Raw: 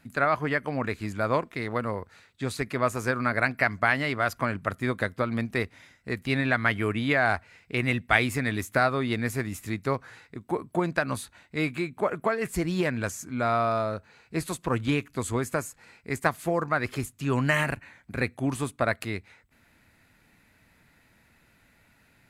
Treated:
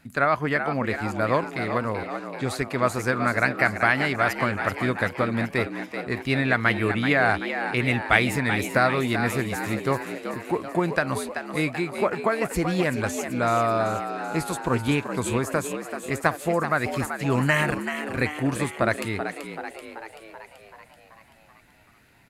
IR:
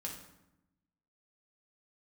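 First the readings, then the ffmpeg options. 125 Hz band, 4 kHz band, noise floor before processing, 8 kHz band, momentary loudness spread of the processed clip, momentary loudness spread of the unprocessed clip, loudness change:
+2.5 dB, +3.5 dB, -63 dBFS, +3.5 dB, 9 LU, 10 LU, +3.0 dB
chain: -filter_complex "[0:a]asplit=9[a][b][c][d][e][f][g][h][i];[b]adelay=383,afreqshift=74,volume=-8.5dB[j];[c]adelay=766,afreqshift=148,volume=-12.9dB[k];[d]adelay=1149,afreqshift=222,volume=-17.4dB[l];[e]adelay=1532,afreqshift=296,volume=-21.8dB[m];[f]adelay=1915,afreqshift=370,volume=-26.2dB[n];[g]adelay=2298,afreqshift=444,volume=-30.7dB[o];[h]adelay=2681,afreqshift=518,volume=-35.1dB[p];[i]adelay=3064,afreqshift=592,volume=-39.6dB[q];[a][j][k][l][m][n][o][p][q]amix=inputs=9:normalize=0,volume=2.5dB"

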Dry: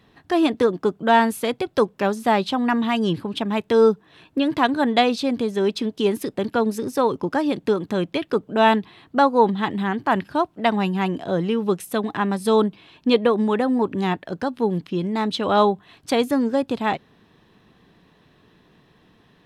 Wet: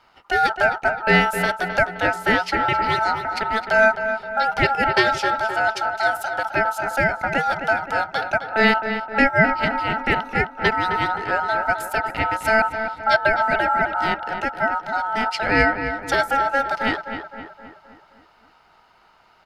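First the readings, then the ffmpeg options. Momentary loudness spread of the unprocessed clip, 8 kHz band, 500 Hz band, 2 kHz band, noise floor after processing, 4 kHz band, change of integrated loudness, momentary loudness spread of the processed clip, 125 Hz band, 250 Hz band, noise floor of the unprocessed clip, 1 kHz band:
7 LU, +0.5 dB, -3.0 dB, +11.0 dB, -56 dBFS, +0.5 dB, +1.0 dB, 6 LU, -0.5 dB, -7.5 dB, -58 dBFS, +3.0 dB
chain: -filter_complex "[0:a]aeval=exprs='val(0)*sin(2*PI*1100*n/s)':c=same,asplit=2[a][b];[b]adelay=261,lowpass=f=2.6k:p=1,volume=-8dB,asplit=2[c][d];[d]adelay=261,lowpass=f=2.6k:p=1,volume=0.54,asplit=2[e][f];[f]adelay=261,lowpass=f=2.6k:p=1,volume=0.54,asplit=2[g][h];[h]adelay=261,lowpass=f=2.6k:p=1,volume=0.54,asplit=2[i][j];[j]adelay=261,lowpass=f=2.6k:p=1,volume=0.54,asplit=2[k][l];[l]adelay=261,lowpass=f=2.6k:p=1,volume=0.54[m];[a][c][e][g][i][k][m]amix=inputs=7:normalize=0,volume=2.5dB"

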